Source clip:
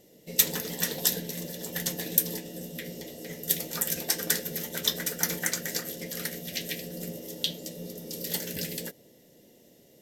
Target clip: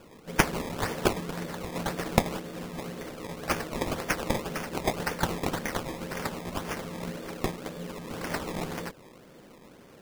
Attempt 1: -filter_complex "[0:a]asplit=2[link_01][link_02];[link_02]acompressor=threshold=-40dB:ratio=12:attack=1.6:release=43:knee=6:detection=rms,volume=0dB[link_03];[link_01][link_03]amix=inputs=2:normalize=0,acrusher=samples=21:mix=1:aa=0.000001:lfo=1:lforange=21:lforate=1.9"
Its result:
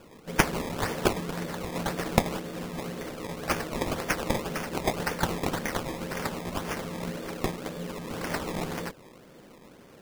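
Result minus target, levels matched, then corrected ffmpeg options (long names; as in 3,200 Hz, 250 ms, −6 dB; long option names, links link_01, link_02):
downward compressor: peak gain reduction −8.5 dB
-filter_complex "[0:a]asplit=2[link_01][link_02];[link_02]acompressor=threshold=-49.5dB:ratio=12:attack=1.6:release=43:knee=6:detection=rms,volume=0dB[link_03];[link_01][link_03]amix=inputs=2:normalize=0,acrusher=samples=21:mix=1:aa=0.000001:lfo=1:lforange=21:lforate=1.9"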